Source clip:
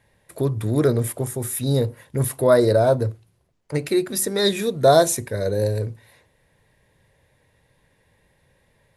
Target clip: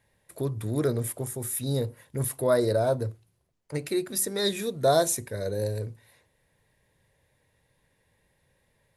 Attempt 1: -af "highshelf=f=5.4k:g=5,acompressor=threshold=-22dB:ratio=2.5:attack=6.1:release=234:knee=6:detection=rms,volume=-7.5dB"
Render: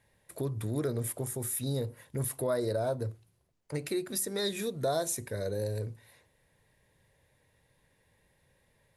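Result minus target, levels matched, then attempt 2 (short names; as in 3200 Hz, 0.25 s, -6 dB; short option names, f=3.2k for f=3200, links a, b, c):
compressor: peak gain reduction +9.5 dB
-af "highshelf=f=5.4k:g=5,volume=-7.5dB"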